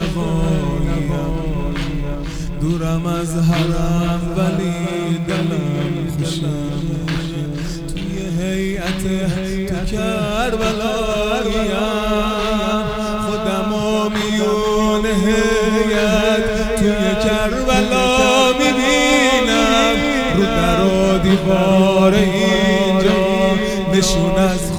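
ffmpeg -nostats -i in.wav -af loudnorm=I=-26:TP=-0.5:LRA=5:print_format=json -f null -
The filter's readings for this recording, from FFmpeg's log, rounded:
"input_i" : "-16.6",
"input_tp" : "-1.2",
"input_lra" : "7.4",
"input_thresh" : "-26.6",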